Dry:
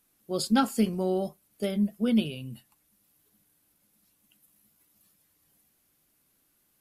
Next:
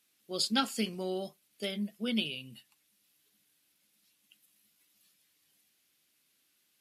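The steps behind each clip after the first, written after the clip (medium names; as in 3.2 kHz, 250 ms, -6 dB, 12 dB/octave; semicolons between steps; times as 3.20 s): frequency weighting D; trim -7 dB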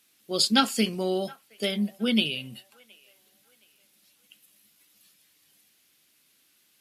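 feedback echo behind a band-pass 719 ms, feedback 33%, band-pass 1.2 kHz, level -22 dB; trim +8 dB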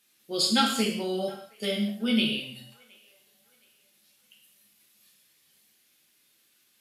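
gated-style reverb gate 240 ms falling, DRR -2 dB; trim -5 dB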